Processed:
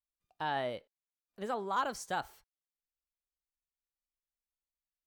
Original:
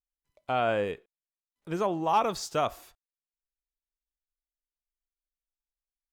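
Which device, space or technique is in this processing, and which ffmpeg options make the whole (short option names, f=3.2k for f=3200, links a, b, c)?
nightcore: -af "asetrate=53361,aresample=44100,volume=-7.5dB"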